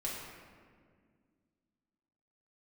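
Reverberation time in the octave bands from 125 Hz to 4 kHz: 2.6, 2.9, 2.1, 1.7, 1.6, 1.1 seconds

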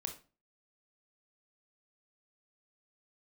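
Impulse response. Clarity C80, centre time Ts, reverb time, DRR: 16.5 dB, 13 ms, 0.35 s, 4.5 dB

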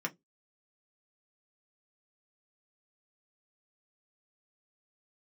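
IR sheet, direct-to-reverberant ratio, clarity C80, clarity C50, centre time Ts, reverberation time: 0.5 dB, 37.5 dB, 27.0 dB, 6 ms, 0.15 s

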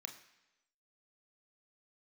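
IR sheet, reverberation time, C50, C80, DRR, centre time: 1.0 s, 10.5 dB, 12.5 dB, 5.0 dB, 15 ms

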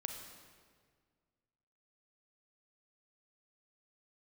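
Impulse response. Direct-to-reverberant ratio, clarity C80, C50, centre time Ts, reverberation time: 4.0 dB, 6.5 dB, 5.0 dB, 44 ms, 1.8 s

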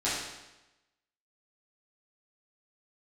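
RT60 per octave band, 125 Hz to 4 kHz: 1.0, 1.0, 1.0, 1.0, 1.0, 0.95 seconds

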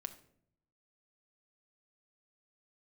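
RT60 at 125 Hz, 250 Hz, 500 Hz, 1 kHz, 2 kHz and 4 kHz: 1.1, 0.90, 0.75, 0.55, 0.50, 0.40 seconds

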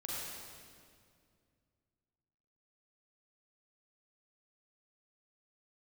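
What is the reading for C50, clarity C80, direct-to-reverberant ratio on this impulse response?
−4.5 dB, −2.5 dB, −6.5 dB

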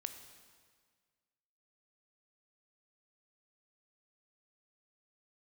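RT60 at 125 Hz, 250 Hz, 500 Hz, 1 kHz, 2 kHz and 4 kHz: 1.8, 1.8, 1.7, 1.7, 1.6, 1.5 seconds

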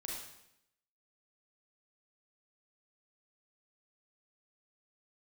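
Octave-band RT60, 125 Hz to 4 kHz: 0.85, 0.90, 0.80, 0.75, 0.80, 0.75 seconds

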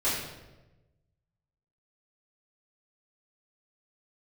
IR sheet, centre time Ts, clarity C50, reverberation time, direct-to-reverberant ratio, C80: 64 ms, 1.0 dB, 1.1 s, −12.0 dB, 4.0 dB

